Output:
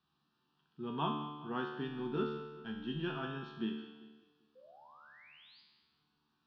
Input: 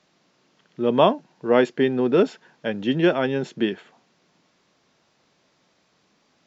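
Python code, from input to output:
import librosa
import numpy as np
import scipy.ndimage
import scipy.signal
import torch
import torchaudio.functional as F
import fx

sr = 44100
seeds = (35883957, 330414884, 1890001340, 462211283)

y = fx.law_mismatch(x, sr, coded='A', at=(1.57, 3.2))
y = fx.low_shelf(y, sr, hz=130.0, db=3.5)
y = fx.fixed_phaser(y, sr, hz=2100.0, stages=6)
y = fx.spec_paint(y, sr, seeds[0], shape='rise', start_s=4.55, length_s=1.06, low_hz=490.0, high_hz=5000.0, level_db=-47.0)
y = fx.air_absorb(y, sr, metres=100.0)
y = fx.comb_fb(y, sr, f0_hz=74.0, decay_s=1.1, harmonics='all', damping=0.0, mix_pct=90)
y = fx.echo_feedback(y, sr, ms=196, feedback_pct=43, wet_db=-17)
y = y * librosa.db_to_amplitude(1.0)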